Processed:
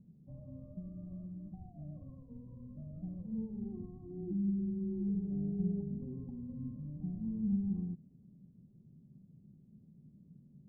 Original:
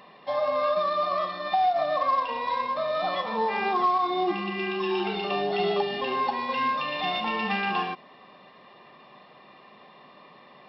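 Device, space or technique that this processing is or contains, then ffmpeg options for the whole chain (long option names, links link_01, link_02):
the neighbour's flat through the wall: -af "lowpass=frequency=170:width=0.5412,lowpass=frequency=170:width=1.3066,equalizer=frequency=85:width_type=o:width=0.77:gain=3,volume=9dB"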